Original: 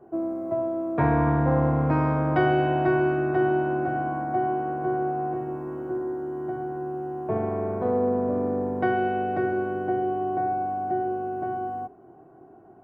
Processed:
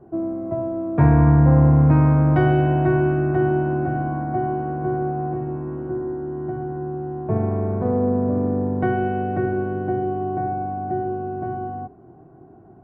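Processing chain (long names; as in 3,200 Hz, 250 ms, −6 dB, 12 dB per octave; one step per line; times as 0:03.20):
bass and treble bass +12 dB, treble −6 dB, from 0:02.60 treble −12 dB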